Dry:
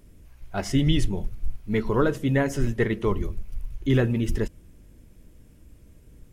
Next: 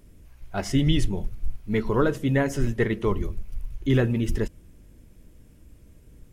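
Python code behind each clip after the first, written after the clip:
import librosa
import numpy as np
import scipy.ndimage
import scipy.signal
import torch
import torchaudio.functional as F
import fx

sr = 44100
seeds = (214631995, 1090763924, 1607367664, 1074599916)

y = x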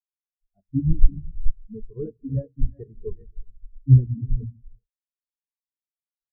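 y = fx.octave_divider(x, sr, octaves=1, level_db=-6.0)
y = fx.rev_gated(y, sr, seeds[0], gate_ms=430, shape='rising', drr_db=3.5)
y = fx.spectral_expand(y, sr, expansion=4.0)
y = y * librosa.db_to_amplitude(6.5)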